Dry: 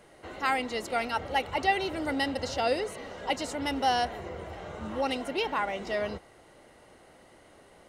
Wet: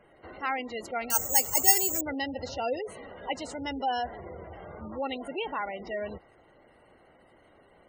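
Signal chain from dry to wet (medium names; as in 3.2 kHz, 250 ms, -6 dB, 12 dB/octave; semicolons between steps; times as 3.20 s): spectral gate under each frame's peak -20 dB strong; 1.10–2.01 s: careless resampling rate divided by 6×, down filtered, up zero stuff; trim -3 dB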